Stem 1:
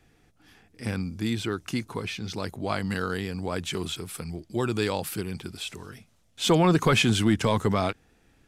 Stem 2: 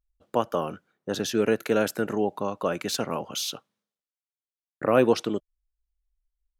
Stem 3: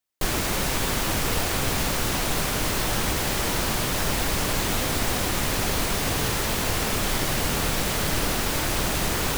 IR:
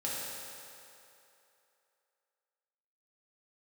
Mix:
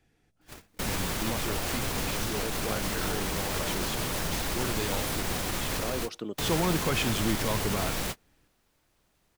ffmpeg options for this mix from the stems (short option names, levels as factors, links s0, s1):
-filter_complex "[0:a]bandreject=f=1200:w=12,volume=0.422,asplit=2[s0][s1];[1:a]adelay=950,volume=0.398[s2];[2:a]adelay=200,volume=0.794[s3];[s1]apad=whole_len=422353[s4];[s3][s4]sidechaingate=range=0.00631:threshold=0.00112:ratio=16:detection=peak[s5];[s2][s5]amix=inputs=2:normalize=0,alimiter=limit=0.0891:level=0:latency=1:release=105,volume=1[s6];[s0][s6]amix=inputs=2:normalize=0"